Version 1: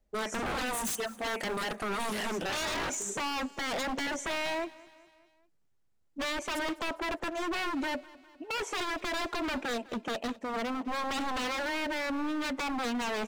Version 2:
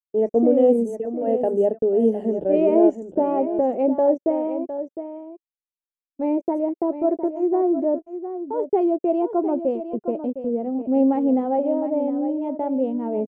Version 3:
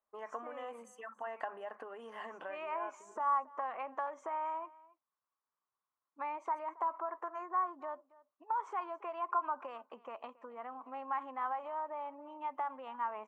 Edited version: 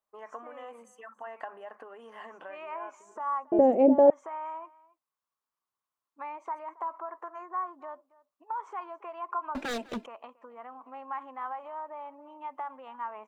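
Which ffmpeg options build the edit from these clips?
-filter_complex "[2:a]asplit=3[s0][s1][s2];[s0]atrim=end=3.522[s3];[1:a]atrim=start=3.518:end=4.102[s4];[s1]atrim=start=4.098:end=9.552[s5];[0:a]atrim=start=9.548:end=10.062[s6];[s2]atrim=start=10.058[s7];[s3][s4]acrossfade=d=0.004:c1=hsin:c2=hsin[s8];[s8][s5]acrossfade=d=0.004:c1=hsin:c2=hsin[s9];[s9][s6]acrossfade=d=0.004:c1=hsin:c2=hsin[s10];[s10][s7]acrossfade=d=0.004:c1=hsin:c2=hsin"

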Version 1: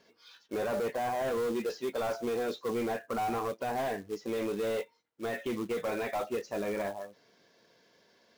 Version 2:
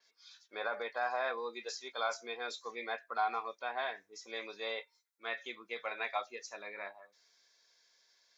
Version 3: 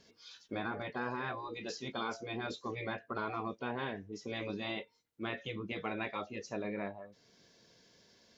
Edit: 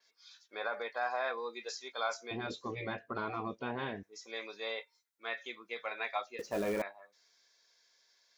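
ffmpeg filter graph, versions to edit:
-filter_complex "[1:a]asplit=3[s0][s1][s2];[s0]atrim=end=2.312[s3];[2:a]atrim=start=2.308:end=4.032[s4];[s1]atrim=start=4.028:end=6.392[s5];[0:a]atrim=start=6.388:end=6.822[s6];[s2]atrim=start=6.818[s7];[s3][s4]acrossfade=d=0.004:c1=hsin:c2=hsin[s8];[s8][s5]acrossfade=d=0.004:c1=hsin:c2=hsin[s9];[s9][s6]acrossfade=d=0.004:c1=hsin:c2=hsin[s10];[s10][s7]acrossfade=d=0.004:c1=hsin:c2=hsin"

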